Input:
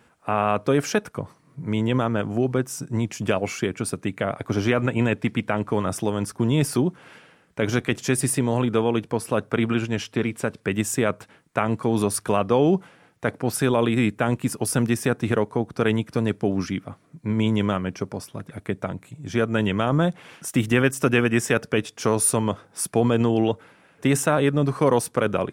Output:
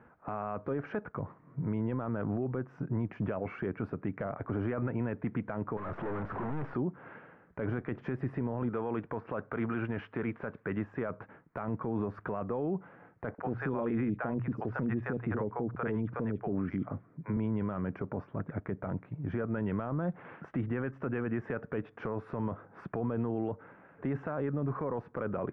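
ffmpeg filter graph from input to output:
-filter_complex "[0:a]asettb=1/sr,asplit=3[a][b][c];[a]atrim=end=5.774[d];[b]atrim=start=5.77:end=6.74,asetpts=PTS-STARTPTS,afade=t=in:d=0.004:c=qsin,afade=t=out:st=0.966:d=0.004:c=qsin,aeval=exprs='val(0)+0.5*0.0224*sgn(val(0))':c=same,equalizer=f=900:w=0.49:g=7.5,aeval=exprs='(tanh(50.1*val(0)+0.25)-tanh(0.25))/50.1':c=same[e];[c]atrim=start=6.736[f];[d][e]acrossfade=d=0.004:c1=hsin:c2=qsin[g];[g][f]acrossfade=d=0.004:c1=qsin:c2=hsin,asettb=1/sr,asplit=3[h][i][j];[h]atrim=end=8.694[k];[i]atrim=start=8.69:end=11.1,asetpts=PTS-STARTPTS,afade=t=in:d=0.004:c=qsin,afade=t=out:st=2.406:d=0.004:c=qsin,deesser=0.9,tiltshelf=f=750:g=-4.5[l];[j]atrim=start=11.096[m];[k][l]acrossfade=d=0.004:c1=hsin:c2=qsin[n];[n][m]acrossfade=d=0.004:c1=qsin:c2=hsin,asettb=1/sr,asplit=3[o][p][q];[o]atrim=end=13.344[r];[p]atrim=start=13.34:end=17.37,asetpts=PTS-STARTPTS,afade=t=in:d=0.004:c=qsin,afade=t=out:st=4.026:d=0.004:c=qsin,bandreject=f=60:t=h:w=6,bandreject=f=120:t=h:w=6,acrossover=split=630|3900[s][t][u];[s]adelay=40[v];[u]adelay=70[w];[v][t][w]amix=inputs=3:normalize=0,atrim=end_sample=177723[x];[q]atrim=start=17.366[y];[r][x]acrossfade=d=0.004:c1=hsin:c2=qsin[z];[z][y]acrossfade=d=0.004:c1=qsin:c2=hsin,lowpass=f=1.7k:w=0.5412,lowpass=f=1.7k:w=1.3066,acompressor=threshold=-26dB:ratio=3,alimiter=level_in=0.5dB:limit=-24dB:level=0:latency=1:release=13,volume=-0.5dB"

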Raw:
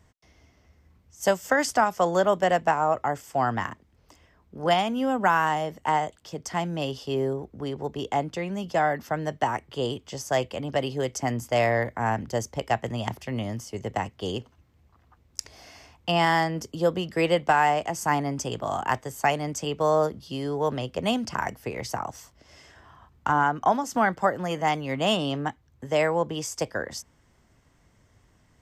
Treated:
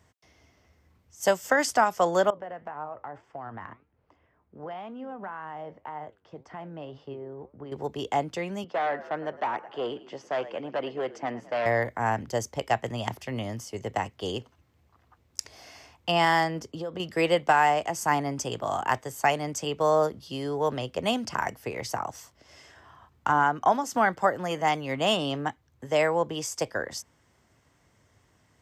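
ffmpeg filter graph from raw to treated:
-filter_complex "[0:a]asettb=1/sr,asplit=3[a][b][c];[a]atrim=end=2.304[d];[b]atrim=start=2.3:end=7.72,asetpts=PTS-STARTPTS,afade=t=in:d=0.004:c=qsin,afade=t=out:st=5.416:d=0.004:c=qsin,lowpass=1.8k,acompressor=threshold=-29dB:ratio=6:attack=3.2:release=140:knee=1:detection=peak,flanger=delay=6.5:depth=4.4:regen=82:speed=1.9:shape=sinusoidal[e];[c]atrim=start=7.716[f];[d][e]acrossfade=d=0.004:c1=hsin:c2=qsin[g];[g][f]acrossfade=d=0.004:c1=qsin:c2=hsin,asettb=1/sr,asplit=3[h][i][j];[h]atrim=end=8.644[k];[i]atrim=start=8.64:end=11.66,asetpts=PTS-STARTPTS,afade=t=in:d=0.004:c=qsin,afade=t=out:st=3.016:d=0.004:c=qsin,asplit=6[l][m][n][o][p][q];[m]adelay=107,afreqshift=-49,volume=-18.5dB[r];[n]adelay=214,afreqshift=-98,volume=-23.2dB[s];[o]adelay=321,afreqshift=-147,volume=-28dB[t];[p]adelay=428,afreqshift=-196,volume=-32.7dB[u];[q]adelay=535,afreqshift=-245,volume=-37.4dB[v];[l][r][s][t][u][v]amix=inputs=6:normalize=0,atrim=end_sample=133182,asoftclip=type=hard:threshold=-23dB,highpass=250,lowpass=2.3k[w];[j]atrim=start=11.656[x];[k][w]acrossfade=d=0.004:c1=hsin:c2=qsin[y];[y][x]acrossfade=d=0.004:c1=qsin:c2=hsin,asettb=1/sr,asplit=3[z][aa][ab];[z]atrim=end=16.594[ac];[aa]atrim=start=16.59:end=17,asetpts=PTS-STARTPTS,afade=t=in:d=0.004:c=qsin,afade=t=out:st=0.406:d=0.004:c=qsin,highshelf=f=6.2k:g=-12,acompressor=threshold=-28dB:ratio=10:attack=3.2:release=140:knee=1:detection=peak[ad];[ab]atrim=start=16.996[ae];[ac][ad]acrossfade=d=0.004:c1=hsin:c2=qsin[af];[af][ae]acrossfade=d=0.004:c1=qsin:c2=hsin,highpass=86,equalizer=f=190:w=1.1:g=-4"

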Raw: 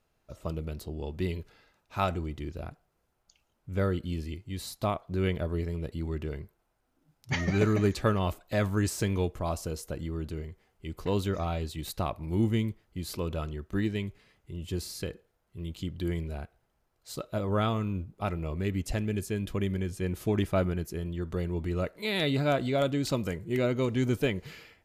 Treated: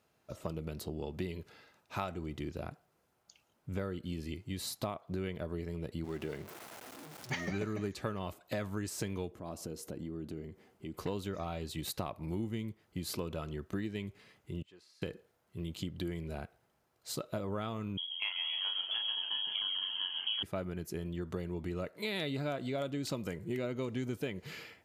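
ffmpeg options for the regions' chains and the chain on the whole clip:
-filter_complex "[0:a]asettb=1/sr,asplit=3[a][b][c];[a]atrim=end=6.044[d];[b]atrim=start=6.04:end=7.51,asetpts=PTS-STARTPTS,afade=t=in:d=0.004:c=qsin,afade=t=out:st=1.466:d=0.004:c=qsin,aeval=exprs='val(0)+0.5*0.00631*sgn(val(0))':c=same,highpass=f=230:p=1[e];[c]atrim=start=7.506[f];[d][e]acrossfade=d=0.004:c1=hsin:c2=qsin[g];[g][f]acrossfade=d=0.004:c1=qsin:c2=hsin,asettb=1/sr,asplit=3[h][i][j];[h]atrim=end=9.314[k];[i]atrim=start=9.31:end=10.94,asetpts=PTS-STARTPTS,afade=t=in:d=0.004:c=qsin,afade=t=out:st=1.626:d=0.004:c=qsin,equalizer=f=270:t=o:w=1.7:g=9.5,acompressor=threshold=-46dB:ratio=2.5:attack=3.2:release=140:knee=1:detection=peak[l];[j]atrim=start=10.936[m];[k][l]acrossfade=d=0.004:c1=hsin:c2=qsin[n];[n][m]acrossfade=d=0.004:c1=qsin:c2=hsin,asettb=1/sr,asplit=3[o][p][q];[o]atrim=end=14.624[r];[p]atrim=start=14.62:end=15.02,asetpts=PTS-STARTPTS,afade=t=in:d=0.004:c=qsin,afade=t=out:st=0.396:d=0.004:c=qsin,lowpass=1.5k,aderivative[s];[q]atrim=start=15.016[t];[r][s]acrossfade=d=0.004:c1=hsin:c2=qsin[u];[u][t]acrossfade=d=0.004:c1=qsin:c2=hsin,asettb=1/sr,asplit=3[v][w][x];[v]atrim=end=17.974[y];[w]atrim=start=17.97:end=20.43,asetpts=PTS-STARTPTS,afade=t=in:d=0.004:c=qsin,afade=t=out:st=2.456:d=0.004:c=qsin,lowpass=f=2.9k:t=q:w=0.5098,lowpass=f=2.9k:t=q:w=0.6013,lowpass=f=2.9k:t=q:w=0.9,lowpass=f=2.9k:t=q:w=2.563,afreqshift=-3400,asplit=2[z][aa];[aa]adelay=34,volume=-3.5dB[ab];[z][ab]amix=inputs=2:normalize=0,atrim=end_sample=108486,asplit=8[ac][ad][ae][af][ag][ah][ai][aj];[ad]adelay=137,afreqshift=-70,volume=-7dB[ak];[ae]adelay=274,afreqshift=-140,volume=-11.9dB[al];[af]adelay=411,afreqshift=-210,volume=-16.8dB[am];[ag]adelay=548,afreqshift=-280,volume=-21.6dB[an];[ah]adelay=685,afreqshift=-350,volume=-26.5dB[ao];[ai]adelay=822,afreqshift=-420,volume=-31.4dB[ap];[aj]adelay=959,afreqshift=-490,volume=-36.3dB[aq];[ac][ak][al][am][an][ao][ap][aq]amix=inputs=8:normalize=0,atrim=end_sample=108486[ar];[x]atrim=start=20.426[as];[y][ar]acrossfade=d=0.004:c1=hsin:c2=qsin[at];[at][as]acrossfade=d=0.004:c1=qsin:c2=hsin,highpass=110,acompressor=threshold=-37dB:ratio=5,volume=2.5dB"

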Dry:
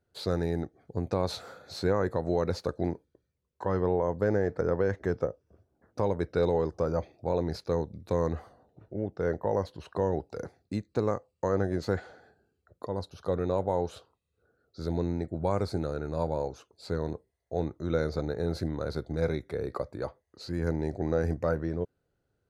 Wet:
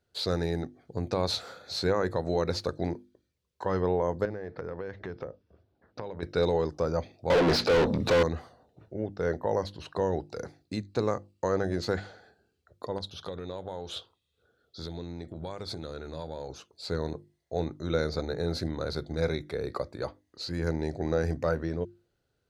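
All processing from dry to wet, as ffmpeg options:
-filter_complex "[0:a]asettb=1/sr,asplit=3[a][b][c];[a]atrim=end=4.254[d];[b]atrim=start=4.25:end=6.23,asetpts=PTS-STARTPTS,afade=t=in:d=0.004:c=qsin,afade=t=out:st=1.976:d=0.004:c=qsin,lowpass=f=4.6k:w=0.5412,lowpass=f=4.6k:w=1.3066,acompressor=threshold=-34dB:ratio=4:attack=3.2:release=140:knee=1:detection=peak[e];[c]atrim=start=6.226[f];[d][e]acrossfade=d=0.004:c1=hsin:c2=qsin[g];[g][f]acrossfade=d=0.004:c1=qsin:c2=hsin,asettb=1/sr,asplit=3[h][i][j];[h]atrim=end=7.304[k];[i]atrim=start=7.3:end=8.23,asetpts=PTS-STARTPTS,afade=t=in:d=0.004:c=qsin,afade=t=out:st=0.926:d=0.004:c=qsin,bandreject=f=60:t=h:w=6,bandreject=f=120:t=h:w=6,bandreject=f=180:t=h:w=6,bandreject=f=240:t=h:w=6,asplit=2[l][m];[m]highpass=f=720:p=1,volume=40dB,asoftclip=type=tanh:threshold=-14.5dB[n];[l][n]amix=inputs=2:normalize=0,lowpass=f=1.1k:p=1,volume=-6dB[o];[j]atrim=start=8.226[p];[k][o]acrossfade=d=0.004:c1=hsin:c2=qsin[q];[q][p]acrossfade=d=0.004:c1=qsin:c2=hsin,asettb=1/sr,asplit=3[r][s][t];[r]atrim=end=12.984[u];[s]atrim=start=12.98:end=16.49,asetpts=PTS-STARTPTS,afade=t=in:d=0.004:c=qsin,afade=t=out:st=3.506:d=0.004:c=qsin,acompressor=threshold=-34dB:ratio=4:attack=3.2:release=140:knee=1:detection=peak,equalizer=f=3.4k:t=o:w=0.22:g=13.5[v];[t]atrim=start=16.486[w];[u][v]acrossfade=d=0.004:c1=hsin:c2=qsin[x];[x][w]acrossfade=d=0.004:c1=qsin:c2=hsin,equalizer=f=4k:w=0.7:g=8,bandreject=f=50:t=h:w=6,bandreject=f=100:t=h:w=6,bandreject=f=150:t=h:w=6,bandreject=f=200:t=h:w=6,bandreject=f=250:t=h:w=6,bandreject=f=300:t=h:w=6,bandreject=f=350:t=h:w=6"

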